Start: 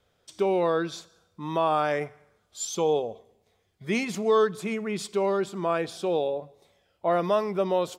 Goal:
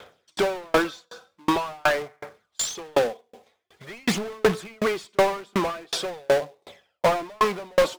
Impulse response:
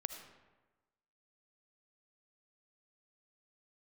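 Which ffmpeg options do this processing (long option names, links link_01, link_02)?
-filter_complex "[0:a]aphaser=in_gain=1:out_gain=1:delay=4.1:decay=0.48:speed=0.46:type=sinusoidal,acrusher=bits=3:mode=log:mix=0:aa=0.000001,asplit=2[link_01][link_02];[link_02]highpass=frequency=720:poles=1,volume=32dB,asoftclip=type=tanh:threshold=-6.5dB[link_03];[link_01][link_03]amix=inputs=2:normalize=0,lowpass=frequency=2700:poles=1,volume=-6dB,aeval=exprs='val(0)*pow(10,-39*if(lt(mod(2.7*n/s,1),2*abs(2.7)/1000),1-mod(2.7*n/s,1)/(2*abs(2.7)/1000),(mod(2.7*n/s,1)-2*abs(2.7)/1000)/(1-2*abs(2.7)/1000))/20)':channel_layout=same"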